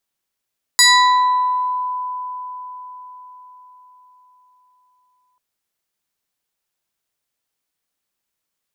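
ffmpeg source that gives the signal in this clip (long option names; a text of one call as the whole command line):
ffmpeg -f lavfi -i "aevalsrc='0.447*pow(10,-3*t/4.92)*sin(2*PI*1000*t+3.1*pow(10,-3*t/1.09)*sin(2*PI*2.95*1000*t))':duration=4.59:sample_rate=44100" out.wav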